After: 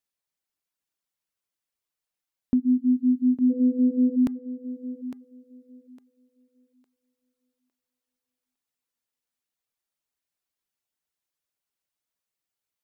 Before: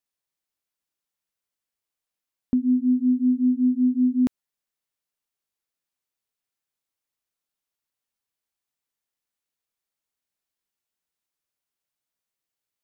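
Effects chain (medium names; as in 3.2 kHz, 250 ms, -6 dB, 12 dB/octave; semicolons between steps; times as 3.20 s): 3.49–4.15 s: whistle 500 Hz -34 dBFS; de-hum 402.9 Hz, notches 5; reverb removal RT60 0.56 s; on a send: thinning echo 857 ms, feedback 27%, high-pass 280 Hz, level -10 dB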